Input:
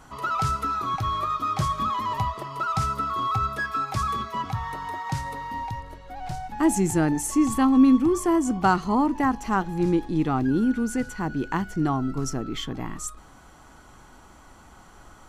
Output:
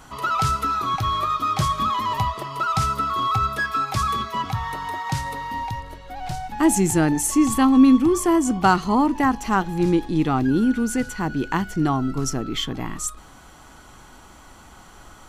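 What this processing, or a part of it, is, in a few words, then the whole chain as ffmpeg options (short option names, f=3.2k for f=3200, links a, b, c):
presence and air boost: -af "equalizer=f=3.3k:t=o:w=1.3:g=4,highshelf=f=9.5k:g=6.5,volume=3dB"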